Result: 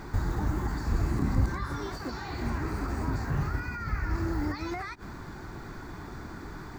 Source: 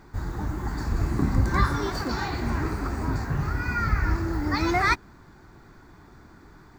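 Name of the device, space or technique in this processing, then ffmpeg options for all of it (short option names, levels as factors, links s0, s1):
de-esser from a sidechain: -filter_complex "[0:a]asplit=2[s0][s1];[s1]highpass=f=6300:p=1,apad=whole_len=299355[s2];[s0][s2]sidechaincompress=threshold=0.00126:ratio=8:attack=2.8:release=45,volume=2.82"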